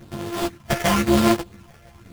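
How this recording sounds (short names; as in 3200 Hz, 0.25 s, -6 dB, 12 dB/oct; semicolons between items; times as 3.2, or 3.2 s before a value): a buzz of ramps at a fixed pitch in blocks of 128 samples; phasing stages 6, 0.97 Hz, lowest notch 270–4000 Hz; aliases and images of a low sample rate 4000 Hz, jitter 20%; a shimmering, thickened sound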